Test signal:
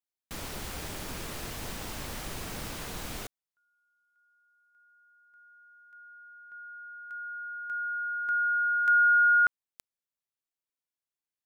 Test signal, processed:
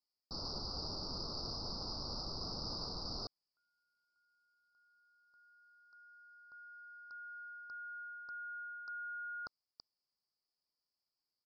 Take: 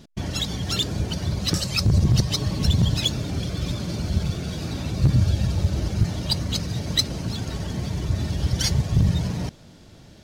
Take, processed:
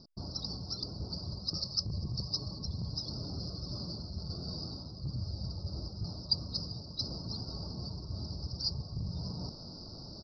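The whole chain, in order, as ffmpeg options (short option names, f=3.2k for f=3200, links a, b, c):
-af "areverse,acompressor=threshold=-36dB:ratio=4:attack=0.3:release=900:detection=peak,areverse,aexciter=amount=6.6:drive=5.8:freq=3k,asuperstop=centerf=2500:order=12:qfactor=0.74,aresample=11025,aresample=44100"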